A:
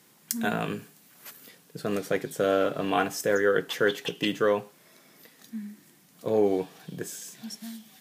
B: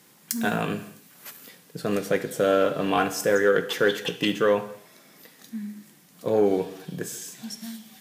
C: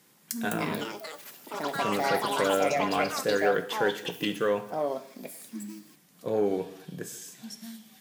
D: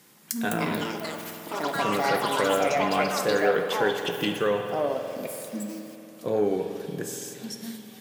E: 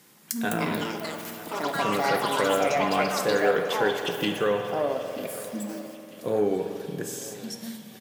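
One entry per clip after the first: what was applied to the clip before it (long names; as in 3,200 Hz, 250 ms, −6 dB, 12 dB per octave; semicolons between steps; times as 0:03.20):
soft clipping −11 dBFS, distortion −25 dB; reverb whose tail is shaped and stops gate 310 ms falling, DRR 10.5 dB; level +3 dB
delay with pitch and tempo change per echo 296 ms, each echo +6 semitones, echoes 3; level −5.5 dB
in parallel at −2 dB: downward compressor, threshold −35 dBFS, peak gain reduction 14.5 dB; on the sum: spring reverb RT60 3.3 s, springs 47 ms, chirp 60 ms, DRR 6 dB
repeating echo 942 ms, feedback 42%, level −18 dB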